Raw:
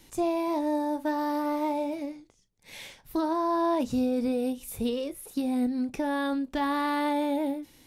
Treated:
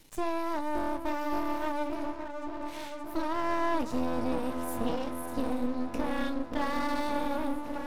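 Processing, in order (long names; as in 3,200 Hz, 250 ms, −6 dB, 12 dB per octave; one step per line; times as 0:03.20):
echo whose low-pass opens from repeat to repeat 572 ms, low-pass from 750 Hz, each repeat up 1 octave, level −6 dB
half-wave rectification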